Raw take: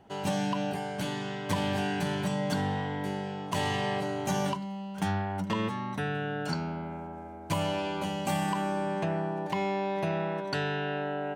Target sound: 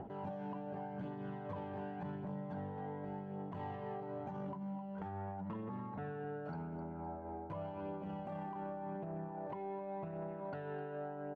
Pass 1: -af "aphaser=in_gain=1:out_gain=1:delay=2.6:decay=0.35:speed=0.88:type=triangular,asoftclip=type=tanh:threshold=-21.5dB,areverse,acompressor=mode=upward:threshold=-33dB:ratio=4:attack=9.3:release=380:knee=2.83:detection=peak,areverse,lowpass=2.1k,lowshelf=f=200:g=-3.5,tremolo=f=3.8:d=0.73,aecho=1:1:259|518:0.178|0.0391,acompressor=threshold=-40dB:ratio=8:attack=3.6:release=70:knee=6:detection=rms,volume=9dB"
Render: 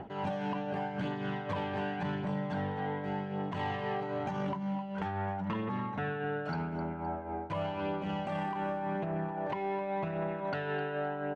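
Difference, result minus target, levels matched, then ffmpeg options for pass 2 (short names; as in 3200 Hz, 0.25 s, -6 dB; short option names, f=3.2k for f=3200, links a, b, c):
compressor: peak gain reduction -8.5 dB; 2000 Hz band +7.0 dB
-af "aphaser=in_gain=1:out_gain=1:delay=2.6:decay=0.35:speed=0.88:type=triangular,asoftclip=type=tanh:threshold=-21.5dB,areverse,acompressor=mode=upward:threshold=-33dB:ratio=4:attack=9.3:release=380:knee=2.83:detection=peak,areverse,lowpass=1k,lowshelf=f=200:g=-3.5,tremolo=f=3.8:d=0.73,aecho=1:1:259|518:0.178|0.0391,acompressor=threshold=-50dB:ratio=8:attack=3.6:release=70:knee=6:detection=rms,volume=9dB"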